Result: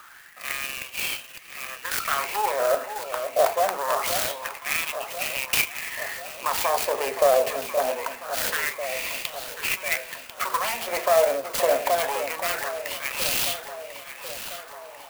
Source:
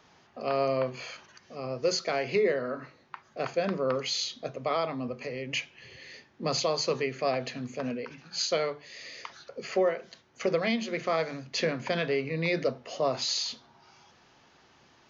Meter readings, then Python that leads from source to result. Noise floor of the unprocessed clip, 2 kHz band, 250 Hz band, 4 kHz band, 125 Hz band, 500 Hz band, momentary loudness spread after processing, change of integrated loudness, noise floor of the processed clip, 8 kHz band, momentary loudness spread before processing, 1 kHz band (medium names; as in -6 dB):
-61 dBFS, +8.5 dB, -10.0 dB, +3.0 dB, -10.5 dB, +4.0 dB, 12 LU, +5.0 dB, -44 dBFS, no reading, 15 LU, +9.0 dB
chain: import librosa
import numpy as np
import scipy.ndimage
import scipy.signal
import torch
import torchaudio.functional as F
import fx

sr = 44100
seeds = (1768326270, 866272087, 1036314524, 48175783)

p1 = fx.self_delay(x, sr, depth_ms=0.25)
p2 = fx.hum_notches(p1, sr, base_hz=50, count=10)
p3 = fx.over_compress(p2, sr, threshold_db=-33.0, ratio=-0.5)
p4 = p2 + (p3 * 10.0 ** (2.0 / 20.0))
p5 = fx.filter_lfo_highpass(p4, sr, shape='sine', hz=0.24, low_hz=580.0, high_hz=2800.0, q=4.8)
p6 = fx.echo_alternate(p5, sr, ms=522, hz=1000.0, feedback_pct=73, wet_db=-8.5)
p7 = fx.clock_jitter(p6, sr, seeds[0], jitter_ms=0.044)
y = p7 * 10.0 ** (-1.0 / 20.0)